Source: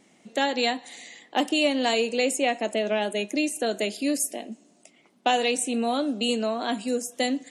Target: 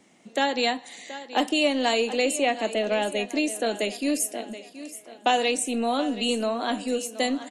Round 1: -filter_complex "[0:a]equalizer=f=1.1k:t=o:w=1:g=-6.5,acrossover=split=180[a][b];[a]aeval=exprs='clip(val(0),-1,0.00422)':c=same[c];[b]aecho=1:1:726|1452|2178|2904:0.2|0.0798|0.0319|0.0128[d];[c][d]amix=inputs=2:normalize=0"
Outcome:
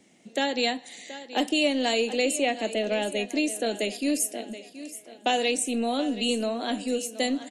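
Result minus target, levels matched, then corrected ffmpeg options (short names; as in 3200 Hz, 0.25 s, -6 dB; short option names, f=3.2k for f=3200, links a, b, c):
1000 Hz band -3.0 dB
-filter_complex "[0:a]equalizer=f=1.1k:t=o:w=1:g=2,acrossover=split=180[a][b];[a]aeval=exprs='clip(val(0),-1,0.00422)':c=same[c];[b]aecho=1:1:726|1452|2178|2904:0.2|0.0798|0.0319|0.0128[d];[c][d]amix=inputs=2:normalize=0"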